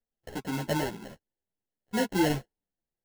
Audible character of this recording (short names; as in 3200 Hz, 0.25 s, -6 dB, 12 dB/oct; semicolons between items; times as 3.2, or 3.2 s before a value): aliases and images of a low sample rate 1200 Hz, jitter 0%; a shimmering, thickened sound